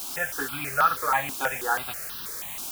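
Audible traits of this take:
a quantiser's noise floor 6 bits, dither triangular
notches that jump at a steady rate 6.2 Hz 500–2,200 Hz

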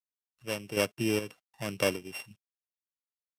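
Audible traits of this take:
a buzz of ramps at a fixed pitch in blocks of 16 samples
chopped level 1.3 Hz, depth 60%, duty 55%
a quantiser's noise floor 12 bits, dither none
Ogg Vorbis

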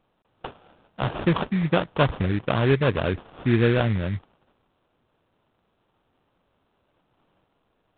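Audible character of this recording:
aliases and images of a low sample rate 2,100 Hz, jitter 20%
mu-law

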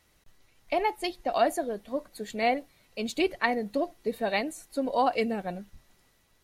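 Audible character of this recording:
background noise floor −66 dBFS
spectral slope −2.5 dB per octave

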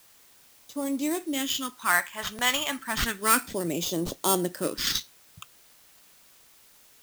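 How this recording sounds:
aliases and images of a low sample rate 10,000 Hz, jitter 0%
phaser sweep stages 2, 0.31 Hz, lowest notch 320–1,600 Hz
a quantiser's noise floor 10 bits, dither triangular

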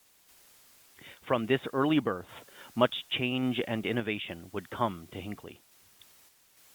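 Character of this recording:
a quantiser's noise floor 10 bits, dither triangular
sample-and-hold tremolo
Opus

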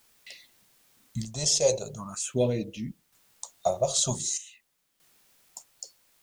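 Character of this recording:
phaser sweep stages 4, 0.46 Hz, lowest notch 250–1,400 Hz
a quantiser's noise floor 12 bits, dither triangular
sample-and-hold tremolo 1.6 Hz, depth 75%

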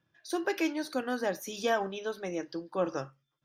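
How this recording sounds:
background noise floor −82 dBFS
spectral slope −4.0 dB per octave

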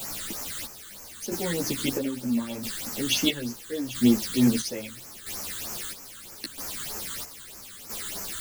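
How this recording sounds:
a quantiser's noise floor 6 bits, dither triangular
phaser sweep stages 8, 3.2 Hz, lowest notch 690–3,600 Hz
chopped level 0.76 Hz, depth 65%, duty 50%
a shimmering, thickened sound

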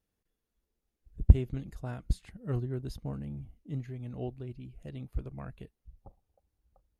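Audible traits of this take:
background noise floor −85 dBFS
spectral slope −10.0 dB per octave

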